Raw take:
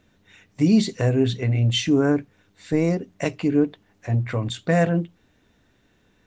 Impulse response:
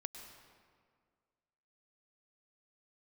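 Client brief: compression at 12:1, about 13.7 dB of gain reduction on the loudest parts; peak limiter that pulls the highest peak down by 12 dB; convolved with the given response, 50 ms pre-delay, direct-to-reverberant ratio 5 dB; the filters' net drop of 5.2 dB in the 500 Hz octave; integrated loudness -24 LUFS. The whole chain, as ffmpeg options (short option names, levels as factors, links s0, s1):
-filter_complex "[0:a]equalizer=f=500:t=o:g=-6.5,acompressor=threshold=0.0447:ratio=12,alimiter=level_in=1.41:limit=0.0631:level=0:latency=1,volume=0.708,asplit=2[s0][s1];[1:a]atrim=start_sample=2205,adelay=50[s2];[s1][s2]afir=irnorm=-1:irlink=0,volume=0.794[s3];[s0][s3]amix=inputs=2:normalize=0,volume=3.55"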